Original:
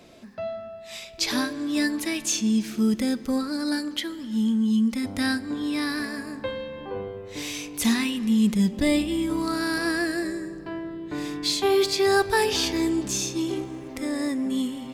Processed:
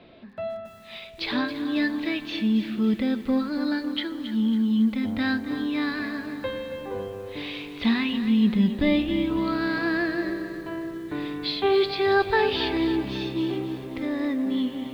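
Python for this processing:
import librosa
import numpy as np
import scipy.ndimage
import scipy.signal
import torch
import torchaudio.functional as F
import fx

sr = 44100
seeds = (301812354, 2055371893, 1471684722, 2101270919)

y = scipy.signal.sosfilt(scipy.signal.butter(8, 4100.0, 'lowpass', fs=sr, output='sos'), x)
y = fx.echo_crushed(y, sr, ms=275, feedback_pct=55, bits=8, wet_db=-11)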